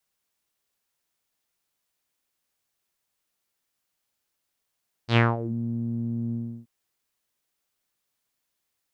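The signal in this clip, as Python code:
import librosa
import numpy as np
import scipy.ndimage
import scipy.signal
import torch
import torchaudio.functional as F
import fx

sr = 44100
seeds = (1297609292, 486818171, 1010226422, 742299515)

y = fx.sub_voice(sr, note=46, wave='saw', cutoff_hz=220.0, q=3.8, env_oct=4.5, env_s=0.44, attack_ms=86.0, decay_s=0.2, sustain_db=-15.5, release_s=0.33, note_s=1.25, slope=12)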